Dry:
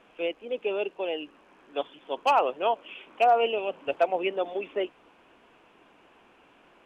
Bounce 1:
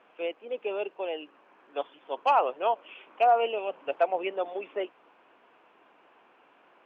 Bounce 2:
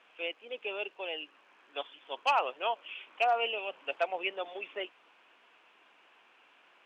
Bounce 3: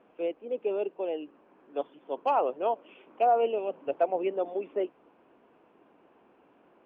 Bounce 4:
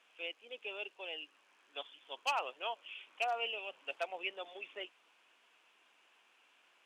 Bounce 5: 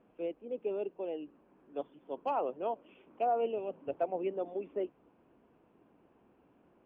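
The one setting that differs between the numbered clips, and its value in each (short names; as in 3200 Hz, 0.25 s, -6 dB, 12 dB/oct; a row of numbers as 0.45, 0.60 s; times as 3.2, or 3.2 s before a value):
band-pass, frequency: 1000, 2800, 340, 7100, 130 Hz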